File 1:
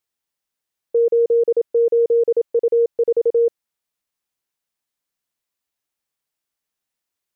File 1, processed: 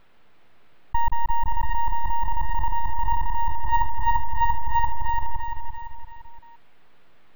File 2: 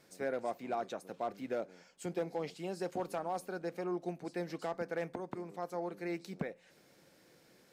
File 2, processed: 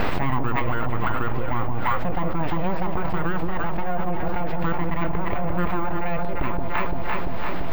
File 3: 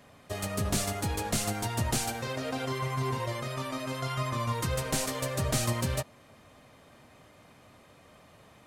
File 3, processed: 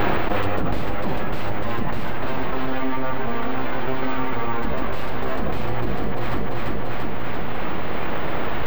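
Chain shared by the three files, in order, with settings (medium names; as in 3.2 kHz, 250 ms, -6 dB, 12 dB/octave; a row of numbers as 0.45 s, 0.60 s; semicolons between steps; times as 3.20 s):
full-wave rectifier; distance through air 470 m; echo whose repeats swap between lows and highs 171 ms, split 850 Hz, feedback 70%, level -5.5 dB; careless resampling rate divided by 2×, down none, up hold; level flattener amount 100%; normalise loudness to -27 LUFS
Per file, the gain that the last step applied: -5.0 dB, +12.0 dB, +6.5 dB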